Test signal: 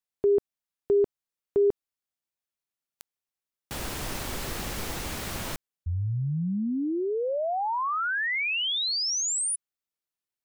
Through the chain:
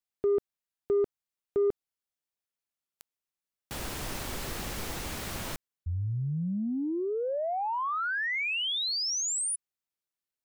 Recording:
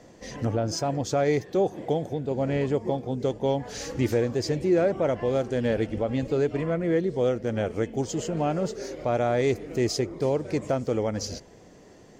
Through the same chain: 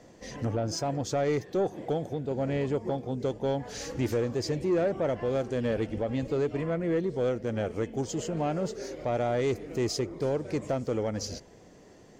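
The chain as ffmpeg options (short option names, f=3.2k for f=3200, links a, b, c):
-af "asoftclip=type=tanh:threshold=-16.5dB,volume=-2.5dB"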